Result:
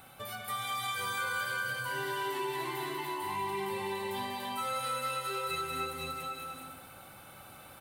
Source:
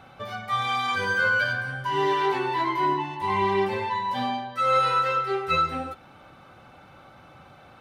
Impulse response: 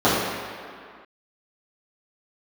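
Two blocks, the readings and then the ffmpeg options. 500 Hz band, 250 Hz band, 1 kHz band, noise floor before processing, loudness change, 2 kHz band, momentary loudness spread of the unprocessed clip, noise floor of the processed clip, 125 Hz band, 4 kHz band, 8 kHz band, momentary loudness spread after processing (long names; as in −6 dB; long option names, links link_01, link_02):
−10.5 dB, −11.0 dB, −11.0 dB, −51 dBFS, −10.5 dB, −10.0 dB, 7 LU, −52 dBFS, −11.0 dB, −5.0 dB, can't be measured, 15 LU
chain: -filter_complex "[0:a]highshelf=frequency=3200:gain=11.5,asplit=2[link_01][link_02];[link_02]aecho=0:1:192:0.501[link_03];[link_01][link_03]amix=inputs=2:normalize=0,aexciter=amount=4:drive=7.8:freq=8100,asplit=2[link_04][link_05];[link_05]aecho=0:1:290|507.5|670.6|793|884.7:0.631|0.398|0.251|0.158|0.1[link_06];[link_04][link_06]amix=inputs=2:normalize=0,acompressor=threshold=-32dB:ratio=2,volume=-7dB"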